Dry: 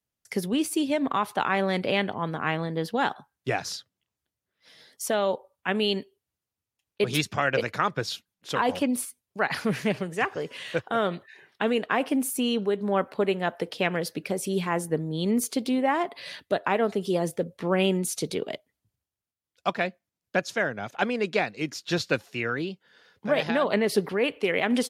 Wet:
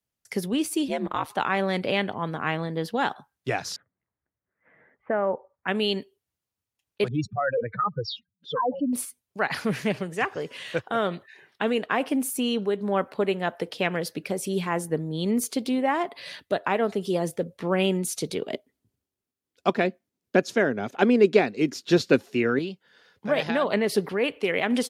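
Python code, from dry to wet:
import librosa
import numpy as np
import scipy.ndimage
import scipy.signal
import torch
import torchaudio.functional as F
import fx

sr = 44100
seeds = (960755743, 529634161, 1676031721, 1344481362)

y = fx.ring_mod(x, sr, carrier_hz=78.0, at=(0.88, 1.3))
y = fx.steep_lowpass(y, sr, hz=2100.0, slope=48, at=(3.76, 5.68))
y = fx.spec_expand(y, sr, power=3.5, at=(7.08, 8.93))
y = fx.small_body(y, sr, hz=(260.0, 380.0), ring_ms=35, db=12, at=(18.52, 22.59))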